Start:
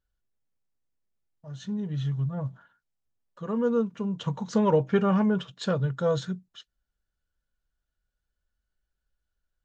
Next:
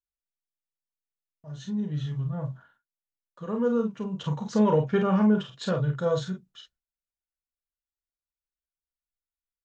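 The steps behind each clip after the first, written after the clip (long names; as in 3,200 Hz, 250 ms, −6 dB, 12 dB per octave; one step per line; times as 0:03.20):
noise gate with hold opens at −53 dBFS
on a send: ambience of single reflections 33 ms −8 dB, 47 ms −6.5 dB
on the sum: level −1.5 dB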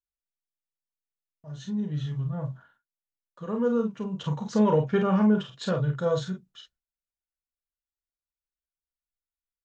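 no processing that can be heard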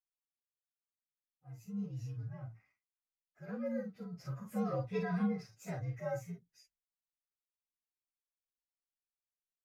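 partials spread apart or drawn together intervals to 120%
amplitude modulation by smooth noise, depth 50%
level −8 dB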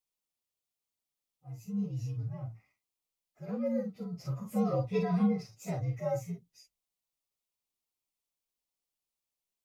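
parametric band 1,600 Hz −14.5 dB 0.43 octaves
level +6 dB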